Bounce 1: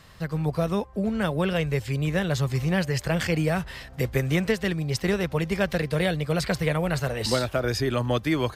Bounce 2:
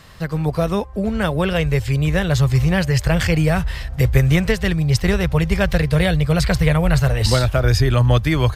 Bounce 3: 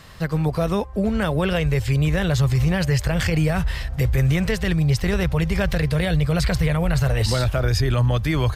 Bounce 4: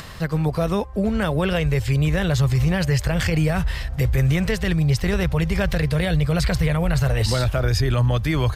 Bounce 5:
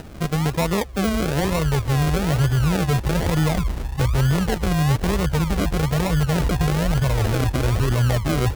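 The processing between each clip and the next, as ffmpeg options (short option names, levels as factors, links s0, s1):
-af "asubboost=boost=7.5:cutoff=95,volume=2.11"
-af "alimiter=limit=0.251:level=0:latency=1:release=34"
-af "acompressor=mode=upward:threshold=0.0316:ratio=2.5"
-af "acrusher=samples=39:mix=1:aa=0.000001:lfo=1:lforange=23.4:lforate=1.1"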